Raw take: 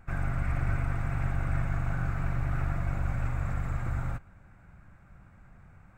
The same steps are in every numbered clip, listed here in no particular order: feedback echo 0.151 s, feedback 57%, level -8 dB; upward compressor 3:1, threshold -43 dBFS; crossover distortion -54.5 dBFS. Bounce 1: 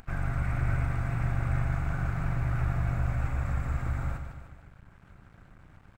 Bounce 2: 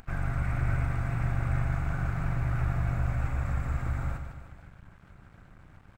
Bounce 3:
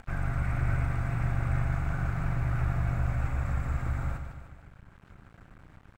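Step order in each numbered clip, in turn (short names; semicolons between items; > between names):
feedback echo > upward compressor > crossover distortion; upward compressor > feedback echo > crossover distortion; feedback echo > crossover distortion > upward compressor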